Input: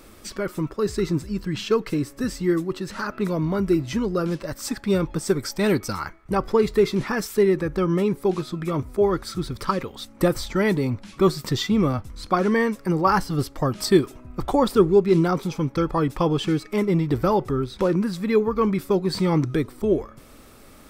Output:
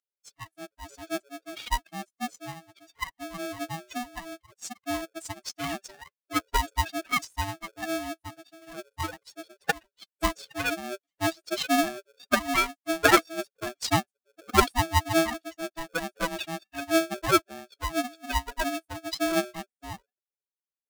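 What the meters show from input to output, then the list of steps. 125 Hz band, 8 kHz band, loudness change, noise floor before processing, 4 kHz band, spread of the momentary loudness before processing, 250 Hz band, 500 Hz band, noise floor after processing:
−13.0 dB, +1.0 dB, −6.0 dB, −48 dBFS, 0.0 dB, 8 LU, −10.5 dB, −11.0 dB, below −85 dBFS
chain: spectral dynamics exaggerated over time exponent 3
loudspeaker in its box 120–7,600 Hz, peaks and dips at 170 Hz +5 dB, 350 Hz −9 dB, 860 Hz +9 dB, 1,700 Hz +9 dB, 6,900 Hz +4 dB
ring modulator with a square carrier 490 Hz

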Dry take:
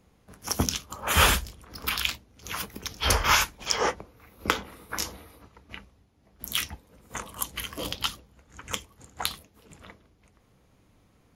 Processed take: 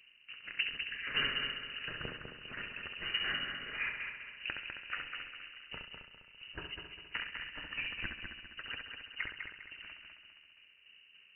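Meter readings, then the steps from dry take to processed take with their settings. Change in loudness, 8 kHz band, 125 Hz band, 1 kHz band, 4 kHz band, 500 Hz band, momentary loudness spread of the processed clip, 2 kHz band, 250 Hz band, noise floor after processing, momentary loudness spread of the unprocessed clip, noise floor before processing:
−11.5 dB, below −40 dB, −19.0 dB, −18.5 dB, −8.0 dB, −17.5 dB, 17 LU, −6.0 dB, −15.5 dB, −62 dBFS, 21 LU, −63 dBFS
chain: parametric band 2,100 Hz −14.5 dB 0.41 octaves
downward compressor 3 to 1, threshold −34 dBFS, peak gain reduction 13 dB
shaped tremolo saw down 3.5 Hz, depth 70%
on a send: echo machine with several playback heads 67 ms, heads first and third, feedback 59%, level −6.5 dB
on the sum: voice inversion scrambler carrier 2,900 Hz
level +1 dB

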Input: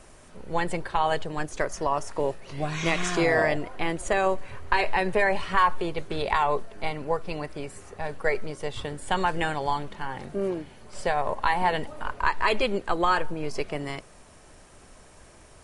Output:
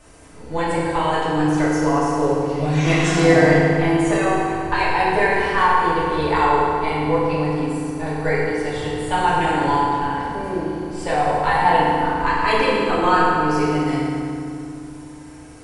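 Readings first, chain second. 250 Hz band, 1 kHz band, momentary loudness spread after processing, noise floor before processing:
+13.5 dB, +8.5 dB, 9 LU, −51 dBFS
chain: feedback delay network reverb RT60 2.5 s, low-frequency decay 1.55×, high-frequency decay 0.65×, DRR −9 dB
level −2.5 dB

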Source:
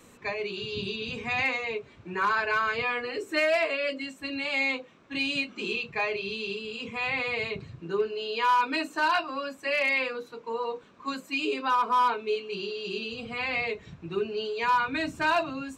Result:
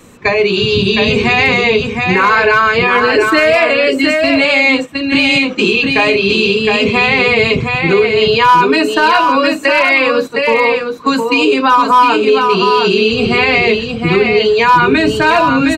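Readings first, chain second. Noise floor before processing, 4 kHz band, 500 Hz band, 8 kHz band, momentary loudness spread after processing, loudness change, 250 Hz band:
−54 dBFS, +18.5 dB, +19.5 dB, +18.0 dB, 4 LU, +18.0 dB, +22.0 dB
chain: noise gate −40 dBFS, range −11 dB
low-shelf EQ 340 Hz +5 dB
downward compressor 2 to 1, threshold −32 dBFS, peak gain reduction 7 dB
single-tap delay 712 ms −5.5 dB
boost into a limiter +23 dB
level −1 dB

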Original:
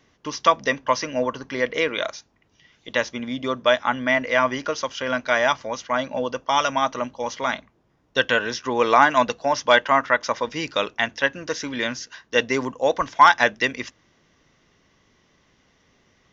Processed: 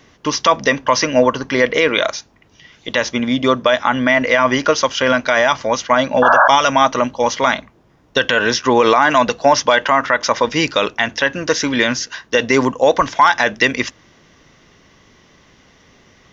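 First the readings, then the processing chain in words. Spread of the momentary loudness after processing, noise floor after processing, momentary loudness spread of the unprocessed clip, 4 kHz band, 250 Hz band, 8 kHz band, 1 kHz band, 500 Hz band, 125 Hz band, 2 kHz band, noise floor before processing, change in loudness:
7 LU, −52 dBFS, 11 LU, +7.5 dB, +10.0 dB, can't be measured, +6.0 dB, +7.5 dB, +9.5 dB, +6.0 dB, −64 dBFS, +6.5 dB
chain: sound drawn into the spectrogram noise, 0:06.22–0:06.48, 560–1,700 Hz −17 dBFS
boost into a limiter +12.5 dB
level −1 dB

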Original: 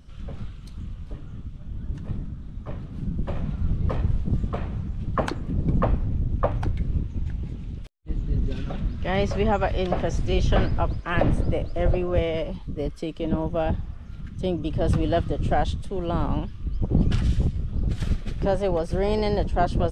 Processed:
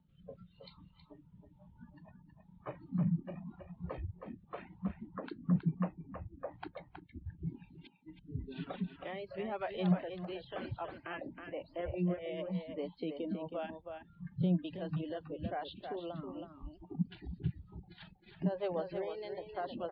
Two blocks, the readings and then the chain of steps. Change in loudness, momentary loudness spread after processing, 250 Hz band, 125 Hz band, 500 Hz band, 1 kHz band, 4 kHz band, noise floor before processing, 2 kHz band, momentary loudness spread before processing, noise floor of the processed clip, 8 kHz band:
−13.0 dB, 21 LU, −9.5 dB, −14.0 dB, −14.0 dB, −15.5 dB, −14.0 dB, −39 dBFS, −14.5 dB, 14 LU, −65 dBFS, can't be measured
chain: downward compressor 5 to 1, threshold −30 dBFS, peak gain reduction 14 dB
brickwall limiter −25.5 dBFS, peak gain reduction 6.5 dB
parametric band 170 Hz +15 dB 0.86 octaves
tuned comb filter 180 Hz, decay 0.78 s, harmonics odd, mix 60%
rotating-speaker cabinet horn 1 Hz
mains-hum notches 50/100/150 Hz
dynamic equaliser 280 Hz, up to −5 dB, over −50 dBFS, Q 0.97
reverb reduction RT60 0.61 s
Butterworth low-pass 4,400 Hz 96 dB per octave
noise reduction from a noise print of the clip's start 23 dB
high-pass filter 78 Hz 6 dB per octave
far-end echo of a speakerphone 320 ms, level −6 dB
level +8.5 dB

